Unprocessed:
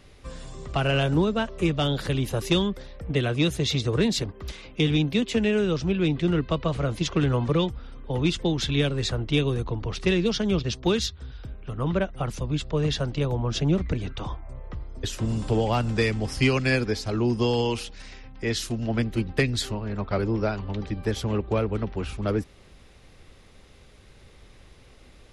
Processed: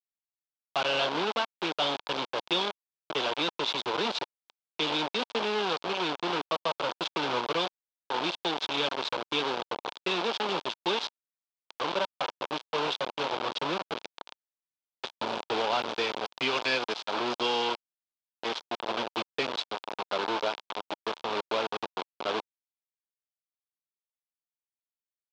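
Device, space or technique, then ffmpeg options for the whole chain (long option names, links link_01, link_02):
hand-held game console: -filter_complex "[0:a]asettb=1/sr,asplit=3[link_01][link_02][link_03];[link_01]atrim=end=16.554[link_04];[link_02]atrim=start=16.55:end=17.65,asetpts=PTS-STARTPTS,afade=type=in:duration=0.004:curve=qsin,afade=type=out:start_time=1.096:duration=0.004:curve=qsin,highshelf=frequency=3800:gain=8[link_05];[link_03]atrim=start=17.646[link_06];[link_04][link_05]acrossfade=duration=0.004:curve1=hsin:curve2=qsin[link_07];[link_07][link_06]acrossfade=duration=0.004:curve1=qsin:curve2=hsin,acrusher=bits=3:mix=0:aa=0.000001,highpass=470,equalizer=frequency=930:width_type=q:width=4:gain=5,equalizer=frequency=1900:width_type=q:width=4:gain=-8,equalizer=frequency=3400:width_type=q:width=4:gain=4,lowpass=frequency=4500:width=0.5412,lowpass=frequency=4500:width=1.3066,volume=-3dB"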